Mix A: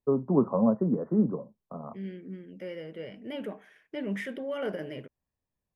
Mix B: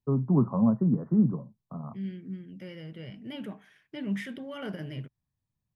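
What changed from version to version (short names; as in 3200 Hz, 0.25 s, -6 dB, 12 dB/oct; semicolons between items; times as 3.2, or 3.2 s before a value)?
master: add ten-band EQ 125 Hz +11 dB, 500 Hz -10 dB, 2000 Hz -3 dB, 4000 Hz +4 dB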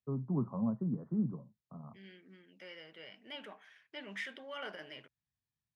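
first voice -10.5 dB; second voice: add BPF 680–6600 Hz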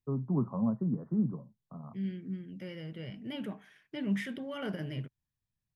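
first voice +3.5 dB; second voice: remove BPF 680–6600 Hz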